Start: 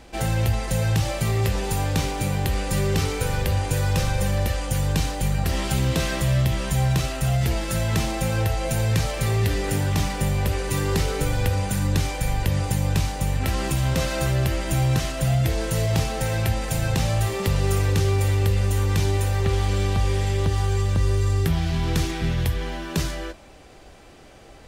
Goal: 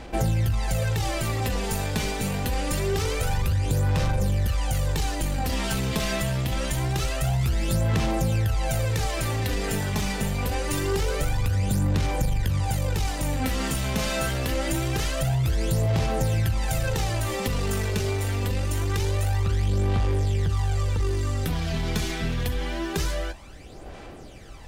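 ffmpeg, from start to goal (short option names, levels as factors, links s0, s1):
-filter_complex "[0:a]asettb=1/sr,asplit=3[s0][s1][s2];[s0]atrim=end=13.044[s3];[s1]atrim=start=13.04:end=15.24,asetpts=PTS-STARTPTS,afade=t=in:d=0.004:c=qsin,afade=t=out:st=2.196:d=0.004:c=qsin,asplit=2[s4][s5];[s5]adelay=34,volume=0.473[s6];[s4][s6]amix=inputs=2:normalize=0,atrim=end_sample=97020[s7];[s2]atrim=start=15.236[s8];[s3][s7]acrossfade=d=0.004:c1=hsin:c2=qsin[s9];[s9][s8]acrossfade=d=0.004:c1=qsin:c2=hsin,asoftclip=type=tanh:threshold=0.126,aphaser=in_gain=1:out_gain=1:delay=4.7:decay=0.57:speed=0.25:type=sinusoidal,acompressor=threshold=0.1:ratio=6"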